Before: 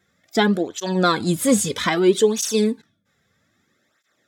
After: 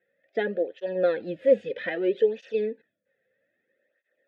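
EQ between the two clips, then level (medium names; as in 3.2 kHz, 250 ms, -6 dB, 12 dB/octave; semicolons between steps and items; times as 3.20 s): vowel filter e; distance through air 340 m; +6.0 dB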